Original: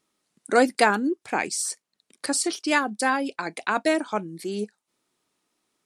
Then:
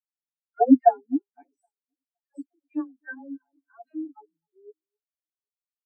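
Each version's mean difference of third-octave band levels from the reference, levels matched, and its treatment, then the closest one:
20.5 dB: comb filter 7.1 ms, depth 77%
all-pass dispersion lows, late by 110 ms, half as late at 580 Hz
on a send: delay that swaps between a low-pass and a high-pass 258 ms, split 1,900 Hz, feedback 76%, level −11 dB
on the sum: every bin expanded away from the loudest bin 4 to 1
level −1 dB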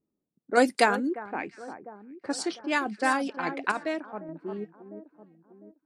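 7.0 dB: floating-point word with a short mantissa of 8 bits
on a send: delay that swaps between a low-pass and a high-pass 351 ms, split 1,800 Hz, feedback 66%, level −11.5 dB
on the sum: sample-and-hold tremolo, depth 70%
low-pass that shuts in the quiet parts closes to 350 Hz, open at −21.5 dBFS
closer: second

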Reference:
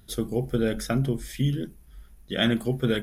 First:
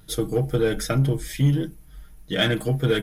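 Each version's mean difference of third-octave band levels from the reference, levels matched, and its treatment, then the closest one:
2.5 dB: comb filter 6.5 ms, depth 76%
in parallel at −7.5 dB: gain into a clipping stage and back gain 25 dB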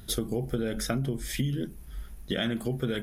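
3.5 dB: in parallel at +2.5 dB: brickwall limiter −19 dBFS, peak gain reduction 10 dB
on the sum: downward compressor 5 to 1, threshold −27 dBFS, peak gain reduction 12 dB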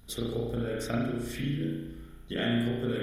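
7.0 dB: downward compressor, threshold −31 dBFS, peak gain reduction 12.5 dB
spring reverb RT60 1.1 s, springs 34 ms, chirp 65 ms, DRR −5.5 dB
level −2 dB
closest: first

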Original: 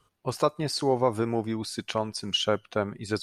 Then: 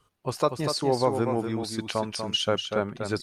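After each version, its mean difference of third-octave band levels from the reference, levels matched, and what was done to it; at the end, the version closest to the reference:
4.5 dB: single-tap delay 242 ms −6.5 dB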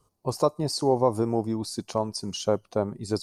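3.0 dB: flat-topped bell 2,200 Hz −13.5 dB
level +2 dB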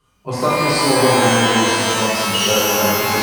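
16.0 dB: reverb with rising layers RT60 2 s, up +12 semitones, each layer −2 dB, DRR −10 dB
level −1 dB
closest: second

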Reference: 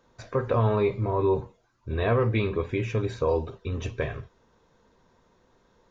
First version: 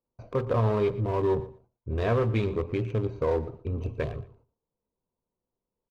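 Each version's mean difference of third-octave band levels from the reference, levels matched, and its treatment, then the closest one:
3.5 dB: adaptive Wiener filter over 25 samples
noise gate −58 dBFS, range −24 dB
in parallel at −8 dB: hard clipping −28 dBFS, distortion −7 dB
on the sum: repeating echo 117 ms, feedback 18%, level −17 dB
level −2.5 dB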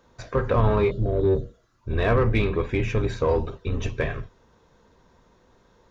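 2.0 dB: sub-octave generator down 2 octaves, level −2 dB
healed spectral selection 0:00.94–0:01.71, 690–2,800 Hz after
dynamic equaliser 1,700 Hz, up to +3 dB, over −44 dBFS, Q 1.1
in parallel at −5 dB: soft clipping −26.5 dBFS, distortion −8 dB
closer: second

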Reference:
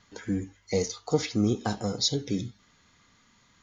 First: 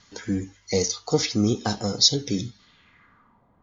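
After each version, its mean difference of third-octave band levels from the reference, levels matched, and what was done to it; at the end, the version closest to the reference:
1.5 dB: low-pass filter sweep 5,700 Hz → 730 Hz, 0:02.52–0:03.44
level +3 dB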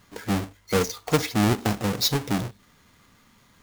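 9.0 dB: each half-wave held at its own peak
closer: first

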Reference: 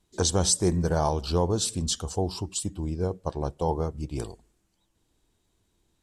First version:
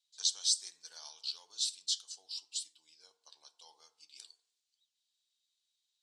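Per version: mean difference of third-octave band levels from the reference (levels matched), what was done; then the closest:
17.0 dB: four-pole ladder band-pass 4,700 Hz, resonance 45%
feedback delay network reverb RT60 0.69 s, low-frequency decay 0.95×, high-frequency decay 0.4×, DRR 10 dB
level +5 dB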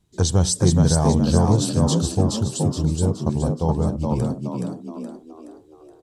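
7.0 dB: parametric band 120 Hz +12.5 dB 1.5 octaves
on a send: echo with shifted repeats 422 ms, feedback 44%, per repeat +58 Hz, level −3 dB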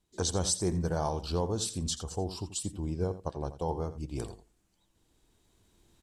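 2.0 dB: camcorder AGC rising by 5.6 dB per second
single-tap delay 84 ms −13.5 dB
level −6.5 dB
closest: third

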